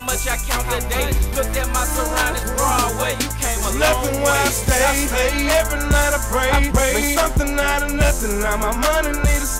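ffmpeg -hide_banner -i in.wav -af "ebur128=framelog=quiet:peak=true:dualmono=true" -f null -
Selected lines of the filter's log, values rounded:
Integrated loudness:
  I:         -15.4 LUFS
  Threshold: -25.3 LUFS
Loudness range:
  LRA:         2.6 LU
  Threshold: -35.0 LUFS
  LRA low:   -16.7 LUFS
  LRA high:  -14.1 LUFS
True peak:
  Peak:       -7.0 dBFS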